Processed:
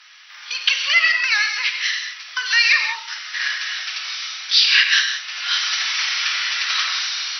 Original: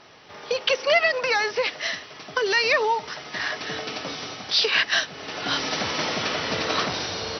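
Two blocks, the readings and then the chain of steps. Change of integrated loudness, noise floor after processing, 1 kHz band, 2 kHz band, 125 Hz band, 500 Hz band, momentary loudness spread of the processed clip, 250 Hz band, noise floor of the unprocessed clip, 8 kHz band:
+6.0 dB, −40 dBFS, −4.5 dB, +6.5 dB, below −40 dB, below −25 dB, 12 LU, below −40 dB, −43 dBFS, can't be measured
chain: high-pass filter 1,500 Hz 24 dB per octave
reverb whose tail is shaped and stops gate 210 ms flat, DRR 3.5 dB
level +6 dB

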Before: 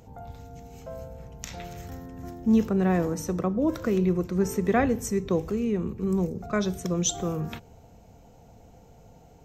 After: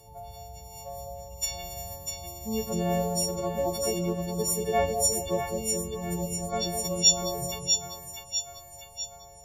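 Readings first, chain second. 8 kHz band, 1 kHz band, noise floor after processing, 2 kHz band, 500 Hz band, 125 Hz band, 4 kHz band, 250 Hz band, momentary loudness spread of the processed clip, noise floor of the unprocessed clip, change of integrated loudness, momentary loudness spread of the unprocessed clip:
+8.5 dB, +1.0 dB, −49 dBFS, −4.5 dB, −1.0 dB, −4.5 dB, +13.0 dB, −9.0 dB, 17 LU, −53 dBFS, −1.5 dB, 19 LU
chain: every partial snapped to a pitch grid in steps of 4 semitones
phaser with its sweep stopped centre 630 Hz, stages 4
echo with a time of its own for lows and highs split 780 Hz, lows 207 ms, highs 647 ms, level −5 dB

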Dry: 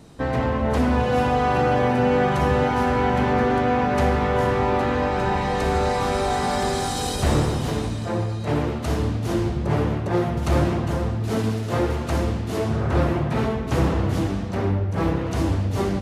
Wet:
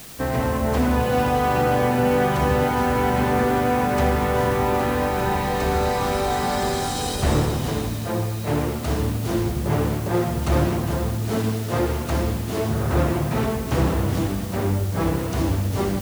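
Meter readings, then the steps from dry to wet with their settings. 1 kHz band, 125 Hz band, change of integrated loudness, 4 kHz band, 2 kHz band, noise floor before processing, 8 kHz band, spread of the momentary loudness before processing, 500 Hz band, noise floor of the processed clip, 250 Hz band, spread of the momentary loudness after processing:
0.0 dB, 0.0 dB, 0.0 dB, +1.0 dB, 0.0 dB, −27 dBFS, +3.0 dB, 5 LU, 0.0 dB, −27 dBFS, 0.0 dB, 5 LU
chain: background noise white −41 dBFS

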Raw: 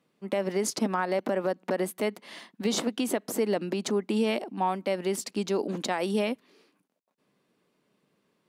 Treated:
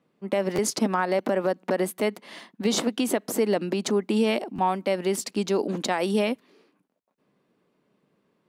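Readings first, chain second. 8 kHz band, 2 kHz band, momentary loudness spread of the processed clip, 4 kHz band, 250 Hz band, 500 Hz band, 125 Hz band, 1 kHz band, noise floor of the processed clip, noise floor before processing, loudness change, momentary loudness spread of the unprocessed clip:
+3.5 dB, +3.5 dB, 5 LU, +3.5 dB, +3.5 dB, +3.5 dB, +3.5 dB, +3.5 dB, −72 dBFS, −74 dBFS, +3.5 dB, 5 LU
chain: buffer that repeats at 0:00.55/0:04.55, samples 512, times 2
one half of a high-frequency compander decoder only
level +3.5 dB

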